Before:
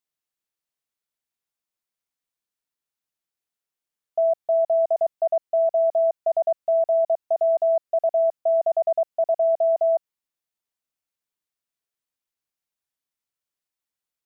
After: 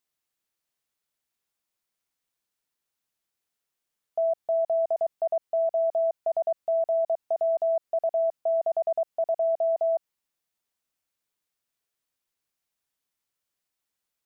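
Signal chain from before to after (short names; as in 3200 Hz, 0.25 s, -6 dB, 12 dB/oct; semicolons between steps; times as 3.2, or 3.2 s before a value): limiter -24.5 dBFS, peak gain reduction 8.5 dB; gain +4 dB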